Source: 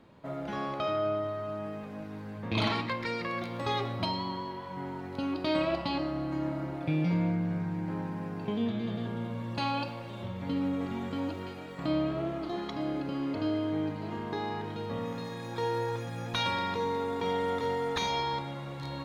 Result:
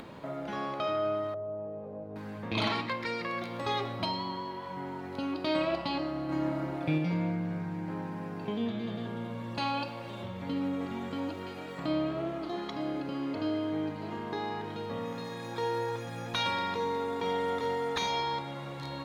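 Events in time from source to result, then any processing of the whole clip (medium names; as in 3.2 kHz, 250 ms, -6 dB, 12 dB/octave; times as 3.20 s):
1.34–2.16 s: FFT filter 100 Hz 0 dB, 270 Hz -8 dB, 510 Hz +5 dB, 1.8 kHz -22 dB, 4.9 kHz -28 dB
6.29–6.98 s: gain +3 dB
whole clip: bass shelf 140 Hz -7.5 dB; upward compressor, threshold -35 dBFS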